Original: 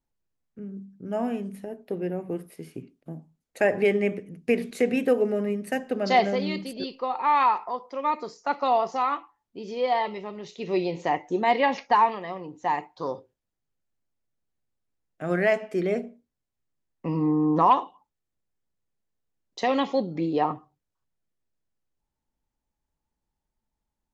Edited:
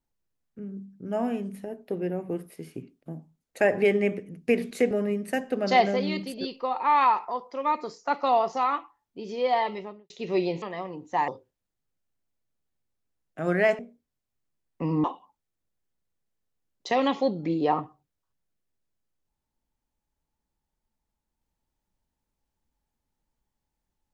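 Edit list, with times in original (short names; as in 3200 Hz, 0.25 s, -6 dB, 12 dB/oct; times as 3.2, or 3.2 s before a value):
4.91–5.3 cut
10.15–10.49 studio fade out
11.01–12.13 cut
12.79–13.11 cut
15.62–16.03 cut
17.28–17.76 cut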